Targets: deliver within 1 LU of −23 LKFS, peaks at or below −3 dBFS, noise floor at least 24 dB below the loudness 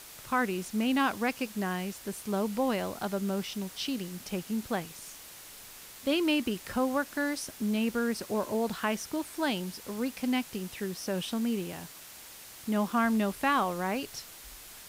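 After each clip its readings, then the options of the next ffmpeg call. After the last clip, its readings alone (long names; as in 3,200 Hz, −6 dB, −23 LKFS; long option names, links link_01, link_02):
background noise floor −49 dBFS; target noise floor −56 dBFS; integrated loudness −31.5 LKFS; sample peak −15.5 dBFS; target loudness −23.0 LKFS
→ -af "afftdn=noise_reduction=7:noise_floor=-49"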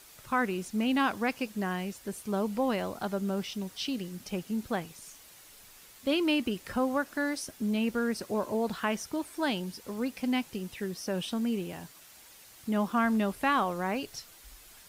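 background noise floor −54 dBFS; target noise floor −56 dBFS
→ -af "afftdn=noise_reduction=6:noise_floor=-54"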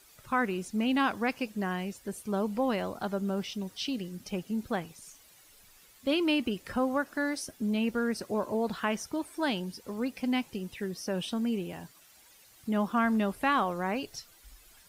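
background noise floor −58 dBFS; integrated loudness −31.5 LKFS; sample peak −16.0 dBFS; target loudness −23.0 LKFS
→ -af "volume=8.5dB"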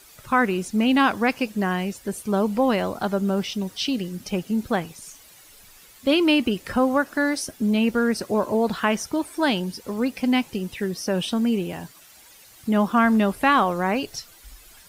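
integrated loudness −23.0 LKFS; sample peak −7.5 dBFS; background noise floor −50 dBFS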